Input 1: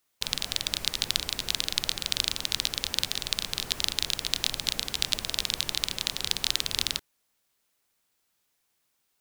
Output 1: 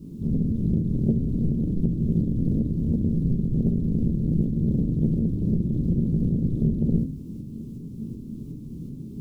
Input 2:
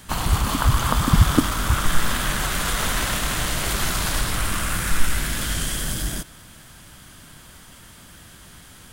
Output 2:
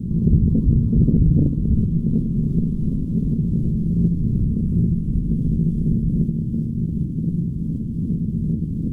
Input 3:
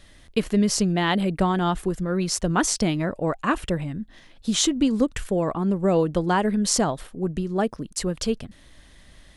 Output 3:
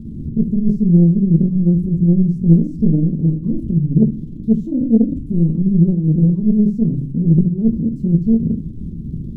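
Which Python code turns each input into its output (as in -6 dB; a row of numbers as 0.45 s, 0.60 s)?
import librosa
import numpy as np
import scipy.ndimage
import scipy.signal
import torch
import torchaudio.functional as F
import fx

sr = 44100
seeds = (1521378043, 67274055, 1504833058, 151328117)

y = x + 0.5 * 10.0 ** (-22.5 / 20.0) * np.sign(x)
y = scipy.signal.sosfilt(scipy.signal.butter(2, 62.0, 'highpass', fs=sr, output='sos'), y)
y = fx.low_shelf(y, sr, hz=82.0, db=-8.0)
y = fx.leveller(y, sr, passes=5)
y = fx.tremolo_shape(y, sr, shape='saw_up', hz=2.7, depth_pct=40)
y = scipy.signal.sosfilt(scipy.signal.cheby2(4, 50, 650.0, 'lowpass', fs=sr, output='sos'), y)
y = fx.room_shoebox(y, sr, seeds[0], volume_m3=250.0, walls='furnished', distance_m=1.2)
y = fx.doppler_dist(y, sr, depth_ms=0.51)
y = F.gain(torch.from_numpy(y), -4.5).numpy()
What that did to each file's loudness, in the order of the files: +3.5 LU, +2.0 LU, +8.0 LU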